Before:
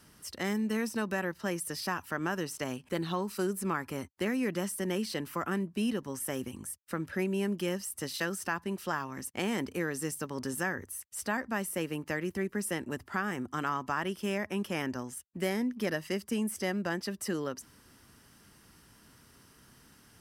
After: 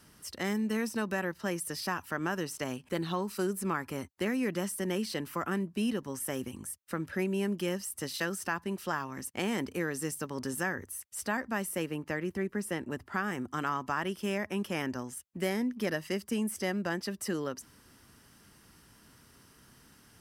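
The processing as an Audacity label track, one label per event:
11.860000	13.150000	treble shelf 3.5 kHz -6 dB

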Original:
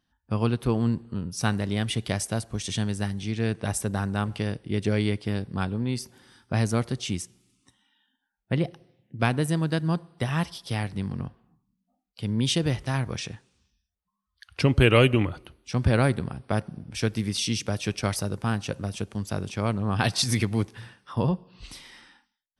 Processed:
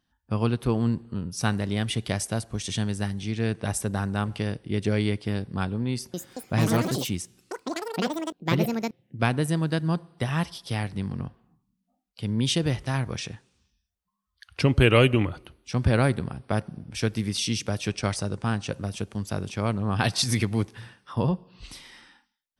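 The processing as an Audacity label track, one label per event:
5.910000	9.830000	ever faster or slower copies 227 ms, each echo +6 st, echoes 3
17.880000	18.710000	steep low-pass 9.8 kHz 48 dB/octave

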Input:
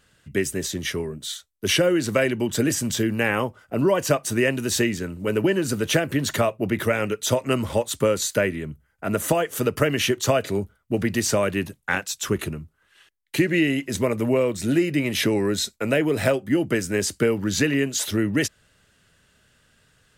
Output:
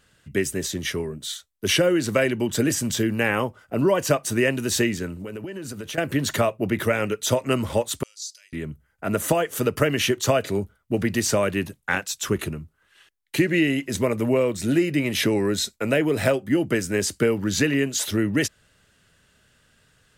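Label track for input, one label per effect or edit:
5.130000	5.980000	compression 10:1, threshold -30 dBFS
8.030000	8.530000	ladder band-pass 5.6 kHz, resonance 65%

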